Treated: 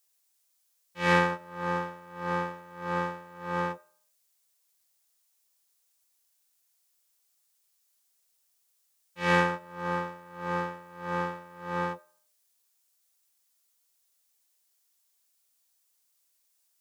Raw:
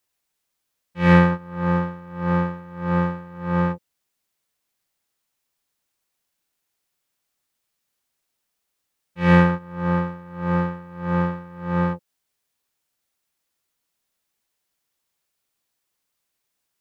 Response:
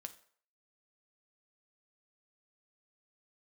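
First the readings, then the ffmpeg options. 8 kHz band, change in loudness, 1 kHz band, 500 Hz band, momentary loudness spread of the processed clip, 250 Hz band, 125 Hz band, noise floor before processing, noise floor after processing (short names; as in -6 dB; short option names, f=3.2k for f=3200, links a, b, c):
n/a, -9.0 dB, -4.0 dB, -6.5 dB, 15 LU, -15.0 dB, -16.0 dB, -78 dBFS, -73 dBFS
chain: -filter_complex "[0:a]bass=f=250:g=-15,treble=f=4k:g=11,bandreject=f=203.4:t=h:w=4,bandreject=f=406.8:t=h:w=4,bandreject=f=610.2:t=h:w=4,bandreject=f=813.6:t=h:w=4,asplit=2[a][b];[1:a]atrim=start_sample=2205[c];[b][c]afir=irnorm=-1:irlink=0,volume=-1dB[d];[a][d]amix=inputs=2:normalize=0,volume=-7.5dB"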